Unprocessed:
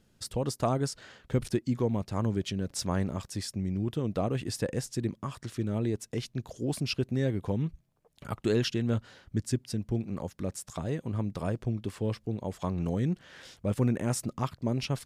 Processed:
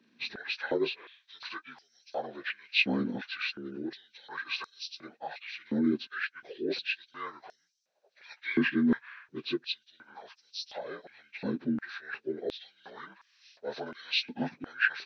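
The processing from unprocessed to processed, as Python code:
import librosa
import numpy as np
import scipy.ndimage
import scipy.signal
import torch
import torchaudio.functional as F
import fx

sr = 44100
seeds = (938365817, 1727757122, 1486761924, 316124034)

y = fx.partial_stretch(x, sr, pct=78)
y = fx.graphic_eq_31(y, sr, hz=(1600, 2500, 4000, 6300), db=(11, 8, 8, 6))
y = fx.filter_held_highpass(y, sr, hz=2.8, low_hz=250.0, high_hz=5500.0)
y = y * librosa.db_to_amplitude(-3.5)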